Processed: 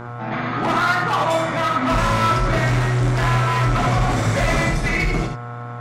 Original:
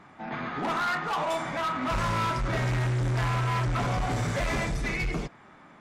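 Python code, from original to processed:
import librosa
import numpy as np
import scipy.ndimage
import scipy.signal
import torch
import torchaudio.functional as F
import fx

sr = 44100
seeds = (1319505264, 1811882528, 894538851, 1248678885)

y = fx.dmg_buzz(x, sr, base_hz=120.0, harmonics=13, level_db=-41.0, tilt_db=-3, odd_only=False)
y = fx.rev_gated(y, sr, seeds[0], gate_ms=100, shape='rising', drr_db=3.5)
y = F.gain(torch.from_numpy(y), 7.5).numpy()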